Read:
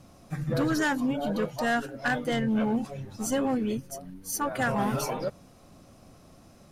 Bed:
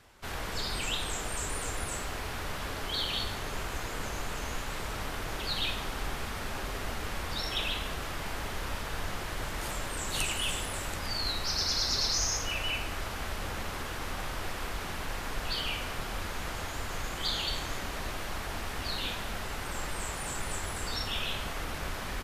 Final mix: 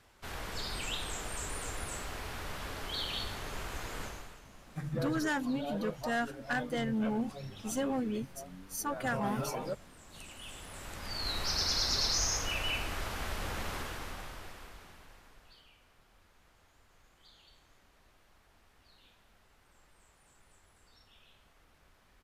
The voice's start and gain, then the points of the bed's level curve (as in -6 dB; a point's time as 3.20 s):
4.45 s, -6.0 dB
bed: 4.03 s -4.5 dB
4.48 s -21.5 dB
10.07 s -21.5 dB
11.41 s -1.5 dB
13.76 s -1.5 dB
15.71 s -29 dB